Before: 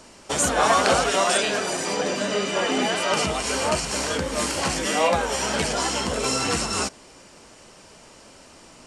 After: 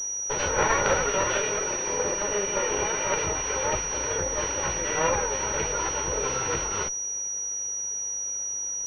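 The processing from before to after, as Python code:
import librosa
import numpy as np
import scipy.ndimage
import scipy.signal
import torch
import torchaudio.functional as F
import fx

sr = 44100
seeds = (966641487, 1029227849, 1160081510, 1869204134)

y = fx.lower_of_two(x, sr, delay_ms=2.1)
y = fx.pwm(y, sr, carrier_hz=5800.0)
y = F.gain(torch.from_numpy(y), -2.0).numpy()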